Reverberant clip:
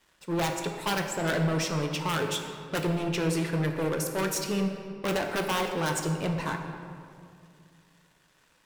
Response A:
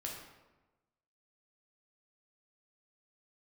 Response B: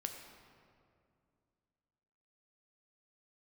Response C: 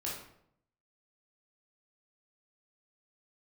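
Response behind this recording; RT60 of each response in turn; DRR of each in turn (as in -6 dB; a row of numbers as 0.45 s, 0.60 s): B; 1.1 s, 2.4 s, 0.70 s; -2.0 dB, 3.5 dB, -5.5 dB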